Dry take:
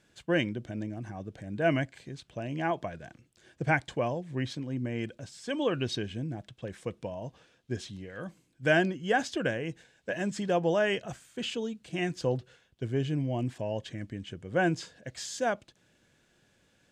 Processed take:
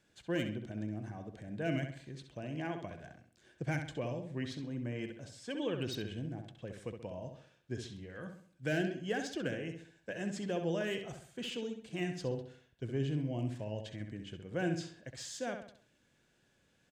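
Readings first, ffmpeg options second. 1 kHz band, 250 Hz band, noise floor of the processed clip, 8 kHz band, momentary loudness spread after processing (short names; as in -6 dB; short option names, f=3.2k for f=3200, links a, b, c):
-12.0 dB, -5.0 dB, -72 dBFS, -5.5 dB, 12 LU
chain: -filter_complex "[0:a]acrossover=split=530|1700[a][b][c];[b]acompressor=threshold=-42dB:ratio=6[d];[c]asoftclip=type=hard:threshold=-31.5dB[e];[a][d][e]amix=inputs=3:normalize=0,asplit=2[f][g];[g]adelay=66,lowpass=f=4.1k:p=1,volume=-6.5dB,asplit=2[h][i];[i]adelay=66,lowpass=f=4.1k:p=1,volume=0.42,asplit=2[j][k];[k]adelay=66,lowpass=f=4.1k:p=1,volume=0.42,asplit=2[l][m];[m]adelay=66,lowpass=f=4.1k:p=1,volume=0.42,asplit=2[n][o];[o]adelay=66,lowpass=f=4.1k:p=1,volume=0.42[p];[f][h][j][l][n][p]amix=inputs=6:normalize=0,volume=-6dB"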